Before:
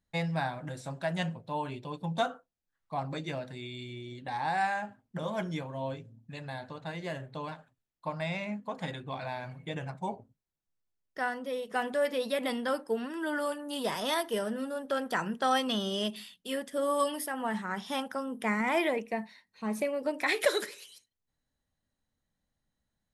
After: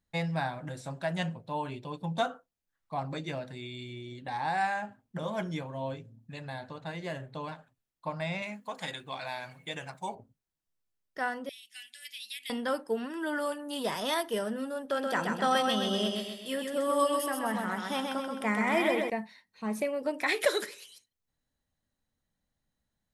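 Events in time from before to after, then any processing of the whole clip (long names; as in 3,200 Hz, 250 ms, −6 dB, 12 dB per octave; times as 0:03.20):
0:08.42–0:10.15: spectral tilt +3 dB per octave
0:11.49–0:12.50: inverse Chebyshev high-pass filter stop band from 1,200 Hz
0:14.82–0:19.10: repeating echo 129 ms, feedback 48%, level −4 dB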